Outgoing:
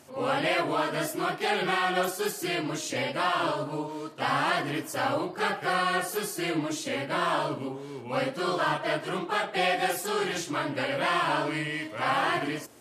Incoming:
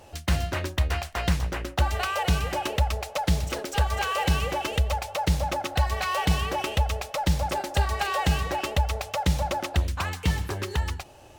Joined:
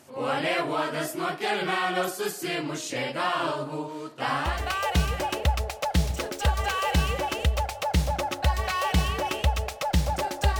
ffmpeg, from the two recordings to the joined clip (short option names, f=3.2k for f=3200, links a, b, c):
-filter_complex "[0:a]apad=whole_dur=10.59,atrim=end=10.59,atrim=end=4.75,asetpts=PTS-STARTPTS[a];[1:a]atrim=start=1.64:end=7.92,asetpts=PTS-STARTPTS[b];[a][b]acrossfade=d=0.44:c1=tri:c2=tri"